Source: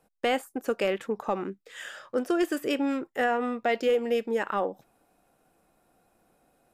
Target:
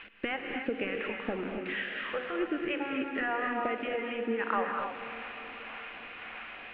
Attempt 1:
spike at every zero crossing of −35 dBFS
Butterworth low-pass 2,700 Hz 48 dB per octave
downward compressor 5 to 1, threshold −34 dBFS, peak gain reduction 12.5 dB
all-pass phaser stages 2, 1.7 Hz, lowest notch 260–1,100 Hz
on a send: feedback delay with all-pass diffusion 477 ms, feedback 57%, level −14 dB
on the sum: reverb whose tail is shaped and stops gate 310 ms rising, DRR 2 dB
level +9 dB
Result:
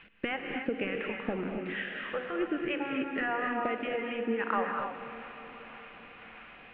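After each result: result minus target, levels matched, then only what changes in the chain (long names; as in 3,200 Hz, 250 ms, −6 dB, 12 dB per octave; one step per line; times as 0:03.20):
spike at every zero crossing: distortion −7 dB; 125 Hz band +3.0 dB
change: spike at every zero crossing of −27.5 dBFS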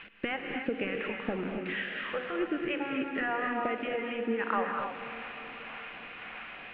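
125 Hz band +3.5 dB
add after downward compressor: parametric band 160 Hz −11 dB 0.37 octaves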